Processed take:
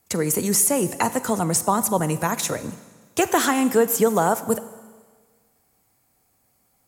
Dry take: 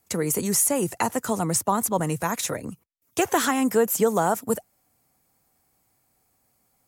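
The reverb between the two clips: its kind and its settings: Schroeder reverb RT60 1.5 s, combs from 32 ms, DRR 13.5 dB; gain +2.5 dB

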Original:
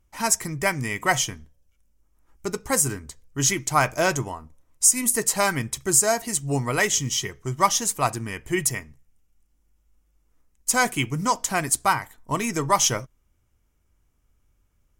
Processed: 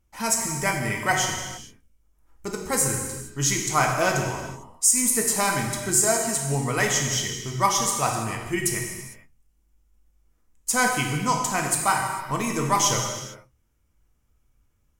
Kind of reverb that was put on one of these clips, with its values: non-linear reverb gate 0.48 s falling, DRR 0.5 dB; gain -3 dB

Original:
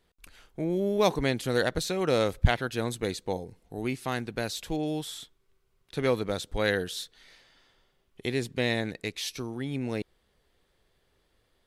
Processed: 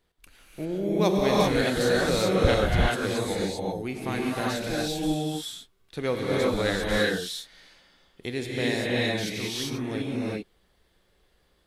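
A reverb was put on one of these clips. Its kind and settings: non-linear reverb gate 0.42 s rising, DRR -5 dB; gain -2.5 dB

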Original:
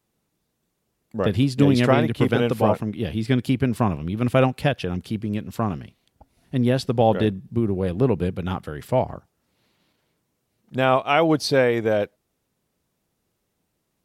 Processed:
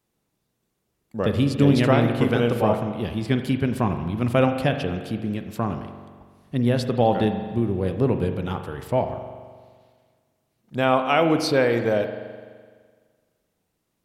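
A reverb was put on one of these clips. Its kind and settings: spring tank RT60 1.7 s, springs 42 ms, chirp 45 ms, DRR 7 dB; gain -1.5 dB

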